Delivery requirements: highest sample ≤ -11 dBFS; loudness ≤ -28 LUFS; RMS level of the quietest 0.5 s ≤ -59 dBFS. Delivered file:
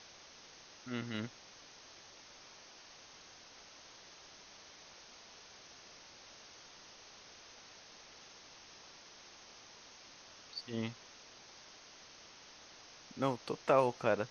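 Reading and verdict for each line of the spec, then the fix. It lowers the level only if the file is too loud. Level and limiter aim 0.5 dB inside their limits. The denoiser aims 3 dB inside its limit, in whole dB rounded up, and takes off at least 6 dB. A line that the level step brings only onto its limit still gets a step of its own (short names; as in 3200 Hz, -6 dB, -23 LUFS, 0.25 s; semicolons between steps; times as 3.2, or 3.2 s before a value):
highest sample -15.5 dBFS: OK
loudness -37.0 LUFS: OK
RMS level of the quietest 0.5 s -57 dBFS: fail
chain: denoiser 6 dB, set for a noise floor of -57 dBFS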